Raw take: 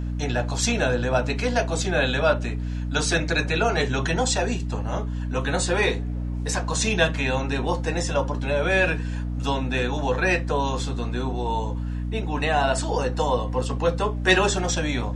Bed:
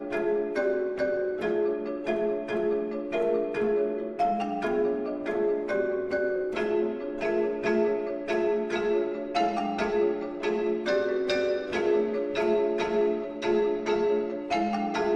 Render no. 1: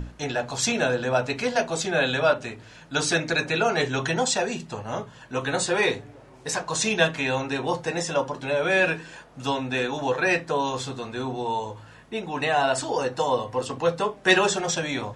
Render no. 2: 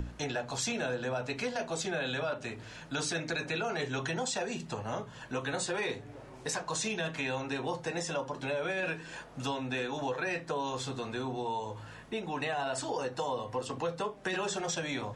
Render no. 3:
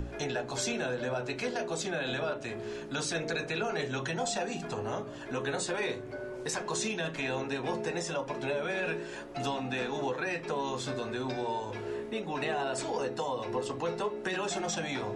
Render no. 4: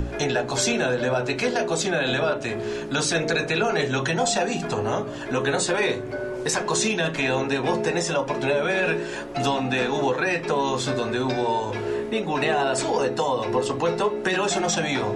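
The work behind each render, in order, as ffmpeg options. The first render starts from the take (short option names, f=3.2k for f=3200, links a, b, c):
-af "bandreject=f=60:t=h:w=6,bandreject=f=120:t=h:w=6,bandreject=f=180:t=h:w=6,bandreject=f=240:t=h:w=6,bandreject=f=300:t=h:w=6"
-filter_complex "[0:a]acrossover=split=200[a][b];[b]alimiter=limit=-16dB:level=0:latency=1:release=11[c];[a][c]amix=inputs=2:normalize=0,acompressor=threshold=-35dB:ratio=2.5"
-filter_complex "[1:a]volume=-13dB[a];[0:a][a]amix=inputs=2:normalize=0"
-af "volume=10dB"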